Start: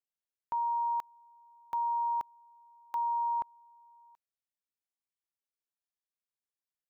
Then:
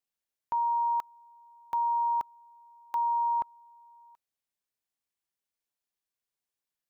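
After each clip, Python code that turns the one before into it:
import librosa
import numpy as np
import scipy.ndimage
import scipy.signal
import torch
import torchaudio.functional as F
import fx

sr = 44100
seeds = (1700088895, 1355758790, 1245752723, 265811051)

y = fx.notch(x, sr, hz=1300.0, q=18.0)
y = y * librosa.db_to_amplitude(3.5)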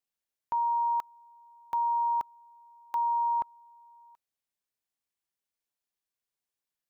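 y = x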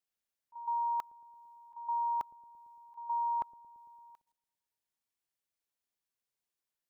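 y = fx.auto_swell(x, sr, attack_ms=443.0)
y = fx.echo_wet_lowpass(y, sr, ms=113, feedback_pct=64, hz=410.0, wet_db=-15.5)
y = fx.level_steps(y, sr, step_db=12)
y = y * librosa.db_to_amplitude(4.0)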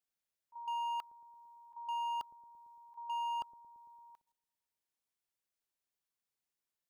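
y = np.clip(10.0 ** (33.0 / 20.0) * x, -1.0, 1.0) / 10.0 ** (33.0 / 20.0)
y = y * librosa.db_to_amplitude(-2.0)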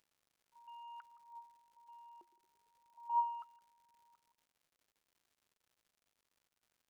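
y = x + 10.0 ** (-18.0 / 20.0) * np.pad(x, (int(166 * sr / 1000.0), 0))[:len(x)]
y = fx.wah_lfo(y, sr, hz=0.33, low_hz=350.0, high_hz=1600.0, q=14.0)
y = fx.dmg_crackle(y, sr, seeds[0], per_s=210.0, level_db=-71.0)
y = y * librosa.db_to_amplitude(8.0)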